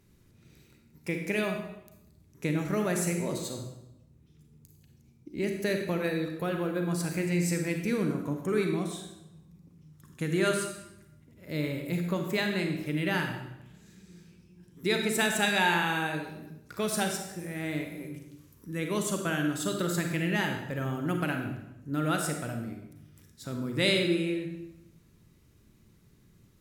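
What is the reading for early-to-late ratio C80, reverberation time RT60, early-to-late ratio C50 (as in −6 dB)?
7.0 dB, 0.85 s, 5.0 dB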